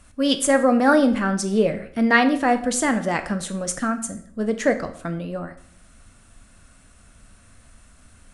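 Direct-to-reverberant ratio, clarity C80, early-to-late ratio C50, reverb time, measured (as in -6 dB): 8.0 dB, 16.0 dB, 12.5 dB, 0.60 s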